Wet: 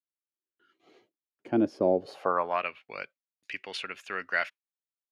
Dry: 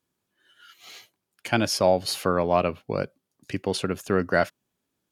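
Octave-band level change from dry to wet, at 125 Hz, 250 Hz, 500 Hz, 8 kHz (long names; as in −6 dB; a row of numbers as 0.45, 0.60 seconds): −14.0 dB, −3.5 dB, −6.5 dB, below −20 dB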